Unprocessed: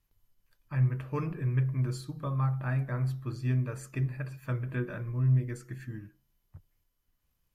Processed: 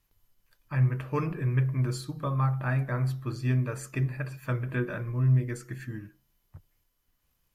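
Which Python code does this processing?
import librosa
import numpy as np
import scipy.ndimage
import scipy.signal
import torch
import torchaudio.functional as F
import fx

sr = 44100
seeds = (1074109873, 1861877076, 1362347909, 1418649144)

y = fx.low_shelf(x, sr, hz=230.0, db=-4.5)
y = F.gain(torch.from_numpy(y), 5.5).numpy()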